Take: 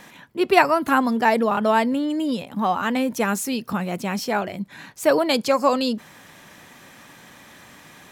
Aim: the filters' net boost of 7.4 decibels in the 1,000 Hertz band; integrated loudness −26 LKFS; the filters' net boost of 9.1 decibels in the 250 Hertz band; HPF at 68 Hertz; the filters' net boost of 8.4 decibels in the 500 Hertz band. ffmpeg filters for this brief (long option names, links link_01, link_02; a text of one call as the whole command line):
ffmpeg -i in.wav -af "highpass=68,equalizer=frequency=250:width_type=o:gain=8.5,equalizer=frequency=500:width_type=o:gain=6.5,equalizer=frequency=1000:width_type=o:gain=6.5,volume=-12dB" out.wav